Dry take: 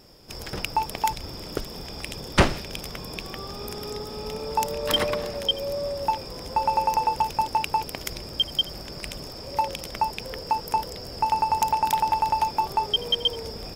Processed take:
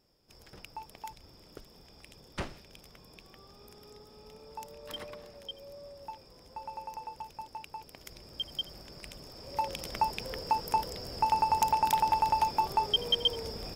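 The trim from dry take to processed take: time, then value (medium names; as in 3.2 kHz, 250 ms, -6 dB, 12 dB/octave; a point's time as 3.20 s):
7.77 s -19 dB
8.52 s -11.5 dB
9.22 s -11.5 dB
9.89 s -4 dB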